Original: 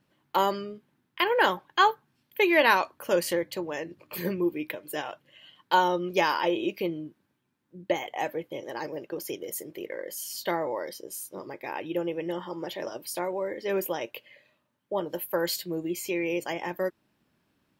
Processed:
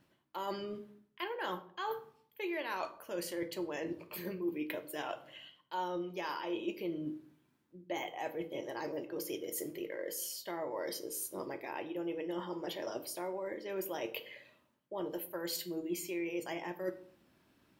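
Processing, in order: reverse; compression 8:1, threshold -39 dBFS, peak gain reduction 22.5 dB; reverse; reverberation RT60 0.55 s, pre-delay 3 ms, DRR 7 dB; trim +2 dB

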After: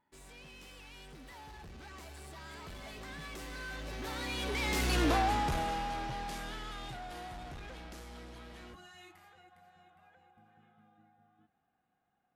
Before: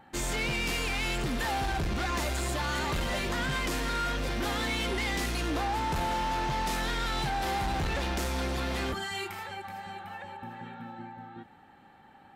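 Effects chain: Doppler pass-by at 5.07 s, 30 m/s, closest 8.7 m; trim +2.5 dB

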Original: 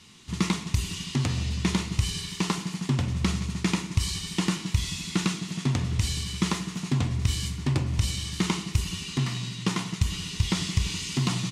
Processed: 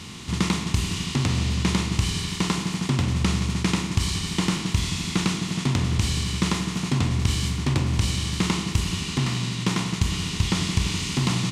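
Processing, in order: spectral levelling over time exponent 0.6; loudspeaker Doppler distortion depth 0.15 ms

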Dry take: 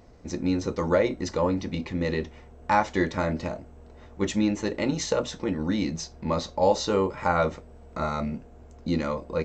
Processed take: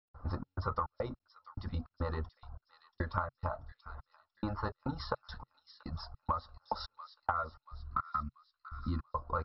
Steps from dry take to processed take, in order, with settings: peaking EQ 170 Hz -13 dB 0.48 oct; reverb removal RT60 0.71 s; level-controlled noise filter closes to 2.8 kHz, open at -25.5 dBFS; trance gate ".xx.xx.x.." 105 bpm -60 dB; in parallel at +1.5 dB: gain riding within 4 dB 2 s; on the sum: FFT filter 130 Hz 0 dB, 360 Hz -20 dB, 1.3 kHz +8 dB, 2.2 kHz -28 dB, 4.8 kHz -15 dB; on a send: feedback echo behind a high-pass 684 ms, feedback 48%, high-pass 3.3 kHz, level -10 dB; on the sum: compression 20:1, threshold -30 dBFS, peak gain reduction 17.5 dB; time-frequency box 7.80–9.03 s, 370–1000 Hz -16 dB; MP2 48 kbps 44.1 kHz

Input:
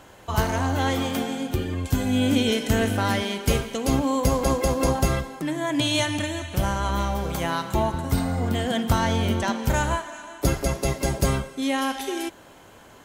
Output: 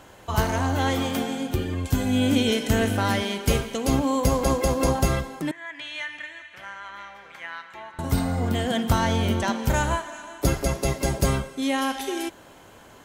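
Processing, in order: 5.51–7.99 s: band-pass filter 1.9 kHz, Q 3.1

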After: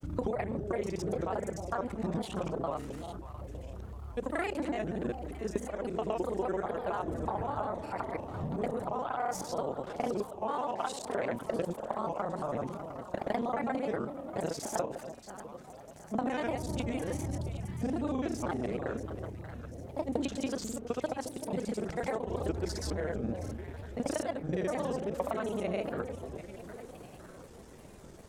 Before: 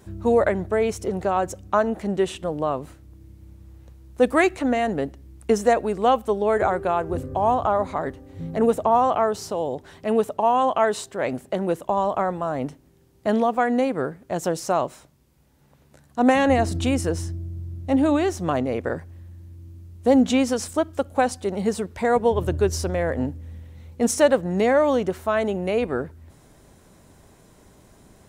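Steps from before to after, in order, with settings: time reversed locally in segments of 31 ms; compression 10:1, threshold -29 dBFS, peak gain reduction 17.5 dB; echo whose repeats swap between lows and highs 343 ms, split 810 Hz, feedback 69%, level -7.5 dB; granulator, pitch spread up and down by 3 st

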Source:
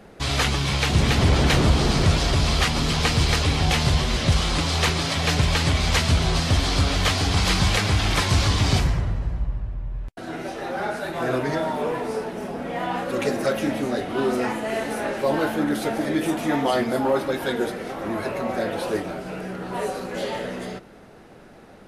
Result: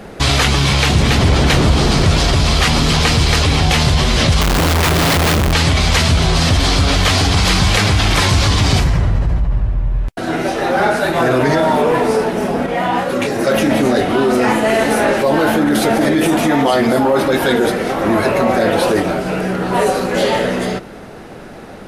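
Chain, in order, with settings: in parallel at +2 dB: compressor with a negative ratio -26 dBFS, ratio -1; 4.41–5.53 s: on the sum: Schmitt trigger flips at -20.5 dBFS; 12.66–13.47 s: detune thickener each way 26 cents; trim +4 dB

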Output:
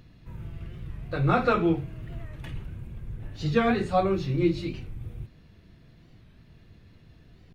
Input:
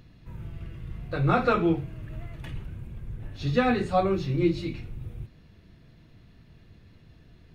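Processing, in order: warped record 45 rpm, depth 160 cents

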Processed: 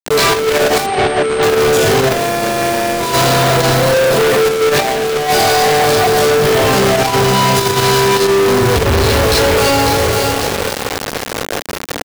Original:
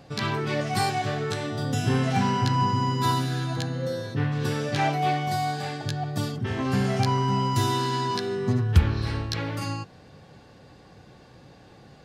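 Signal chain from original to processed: 2.09–3.00 s: sorted samples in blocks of 128 samples; 3.94–4.46 s: high-pass 160 Hz 24 dB/octave; resonant low shelf 350 Hz -9 dB, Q 3; feedback delay 547 ms, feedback 38%, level -12.5 dB; simulated room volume 350 m³, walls mixed, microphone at 1.7 m; companded quantiser 2-bit; peaking EQ 270 Hz +3.5 dB 1.2 oct; wavefolder -14 dBFS; loudness maximiser +24.5 dB; 0.86–1.43 s: class-D stage that switches slowly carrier 8.6 kHz; trim -7.5 dB

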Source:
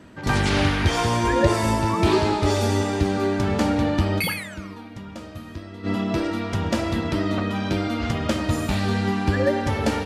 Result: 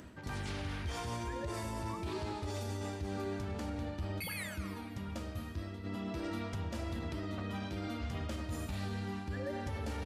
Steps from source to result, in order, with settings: peaking EQ 71 Hz +11.5 dB 0.53 oct; reverse; compression 6:1, threshold -28 dBFS, peak gain reduction 17 dB; reverse; treble shelf 10 kHz +8 dB; upward compressor, threshold -48 dBFS; on a send: feedback delay 226 ms, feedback 43%, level -18 dB; on the sum: peak limiter -25 dBFS, peak gain reduction 7.5 dB; trim -5.5 dB

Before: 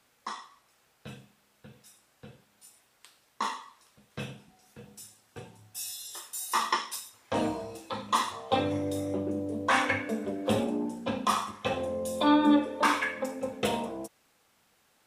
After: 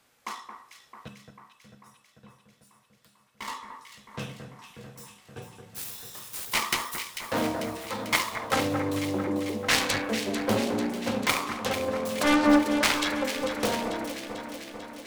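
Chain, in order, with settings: self-modulated delay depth 0.64 ms; 1.08–3.48 s: feedback comb 200 Hz, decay 0.2 s, harmonics odd, mix 70%; echo whose repeats swap between lows and highs 222 ms, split 1.9 kHz, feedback 80%, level -7 dB; trim +2 dB

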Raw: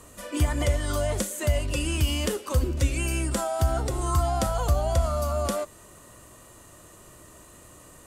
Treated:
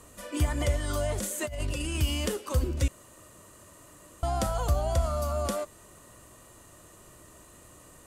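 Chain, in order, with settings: 1.18–1.95 s: compressor with a negative ratio -29 dBFS, ratio -1; 2.88–4.23 s: room tone; trim -3 dB

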